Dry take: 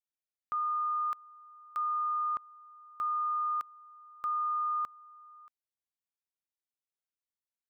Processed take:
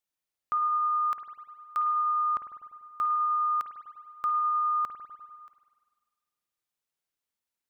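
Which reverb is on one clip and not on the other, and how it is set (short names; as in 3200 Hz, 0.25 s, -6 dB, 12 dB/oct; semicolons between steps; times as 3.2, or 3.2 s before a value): spring tank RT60 1.6 s, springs 49 ms, chirp 25 ms, DRR 6.5 dB; gain +5.5 dB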